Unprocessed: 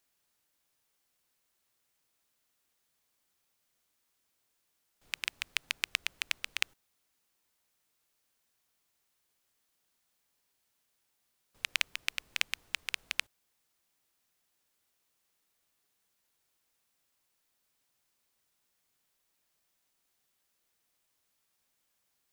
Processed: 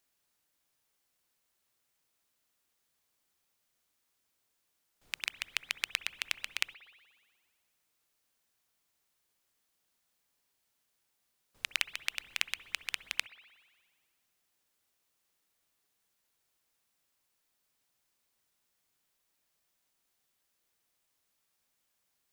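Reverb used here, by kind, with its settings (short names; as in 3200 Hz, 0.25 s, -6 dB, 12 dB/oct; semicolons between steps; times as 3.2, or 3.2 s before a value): spring tank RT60 1.6 s, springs 60 ms, chirp 80 ms, DRR 16 dB; gain -1 dB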